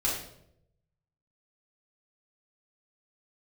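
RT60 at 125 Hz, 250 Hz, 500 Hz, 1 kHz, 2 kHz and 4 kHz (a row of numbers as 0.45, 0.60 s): 1.3, 0.90, 0.90, 0.60, 0.55, 0.55 s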